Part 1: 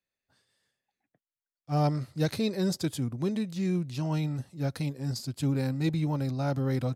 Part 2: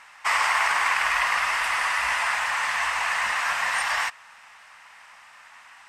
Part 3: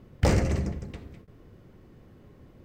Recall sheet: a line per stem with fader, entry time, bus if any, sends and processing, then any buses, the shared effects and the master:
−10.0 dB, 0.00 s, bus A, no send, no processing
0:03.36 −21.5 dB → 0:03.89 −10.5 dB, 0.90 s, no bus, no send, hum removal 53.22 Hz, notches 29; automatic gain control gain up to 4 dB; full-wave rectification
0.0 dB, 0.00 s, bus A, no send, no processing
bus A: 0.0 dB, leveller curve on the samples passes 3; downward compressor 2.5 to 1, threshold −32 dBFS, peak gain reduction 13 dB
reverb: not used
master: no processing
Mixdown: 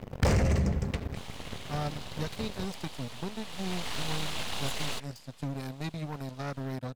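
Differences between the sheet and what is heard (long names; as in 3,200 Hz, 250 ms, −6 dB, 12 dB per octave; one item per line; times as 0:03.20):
stem 3 0.0 dB → +8.0 dB
master: extra parametric band 330 Hz −7 dB 0.33 octaves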